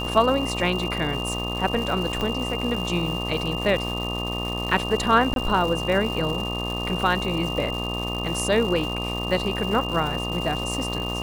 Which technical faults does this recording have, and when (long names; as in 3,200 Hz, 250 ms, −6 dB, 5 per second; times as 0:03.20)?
mains buzz 60 Hz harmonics 21 −30 dBFS
surface crackle 390 per second −30 dBFS
whistle 2,800 Hz −30 dBFS
0:02.21: click −13 dBFS
0:05.34–0:05.36: drop-out 22 ms